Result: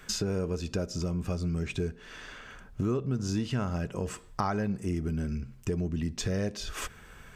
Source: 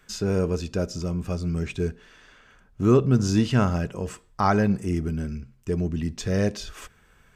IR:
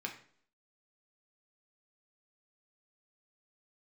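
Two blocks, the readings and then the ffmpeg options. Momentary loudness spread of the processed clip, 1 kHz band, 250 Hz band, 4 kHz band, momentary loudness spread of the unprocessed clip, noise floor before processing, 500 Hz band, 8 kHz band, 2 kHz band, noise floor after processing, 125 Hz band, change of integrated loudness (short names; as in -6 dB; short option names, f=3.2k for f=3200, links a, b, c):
11 LU, -8.5 dB, -7.5 dB, -2.0 dB, 13 LU, -59 dBFS, -8.0 dB, -1.0 dB, -5.5 dB, -52 dBFS, -6.5 dB, -7.5 dB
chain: -af "acompressor=threshold=-38dB:ratio=4,volume=7.5dB"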